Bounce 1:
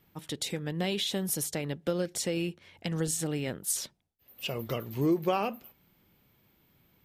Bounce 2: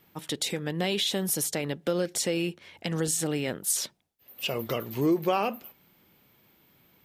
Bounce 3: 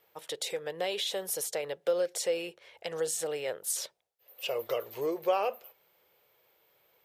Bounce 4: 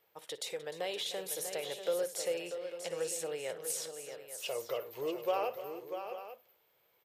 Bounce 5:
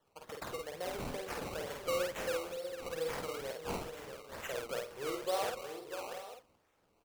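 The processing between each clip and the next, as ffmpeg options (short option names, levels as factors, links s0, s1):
-filter_complex "[0:a]lowshelf=f=120:g=-12,asplit=2[s0][s1];[s1]alimiter=level_in=1.26:limit=0.0631:level=0:latency=1,volume=0.794,volume=0.944[s2];[s0][s2]amix=inputs=2:normalize=0"
-af "lowshelf=f=350:t=q:w=3:g=-11.5,volume=0.531"
-af "aecho=1:1:58|303|642|744|845:0.15|0.188|0.376|0.106|0.224,volume=0.562"
-filter_complex "[0:a]acrusher=samples=18:mix=1:aa=0.000001:lfo=1:lforange=18:lforate=2.2,asplit=2[s0][s1];[s1]adelay=50,volume=0.708[s2];[s0][s2]amix=inputs=2:normalize=0,volume=0.668"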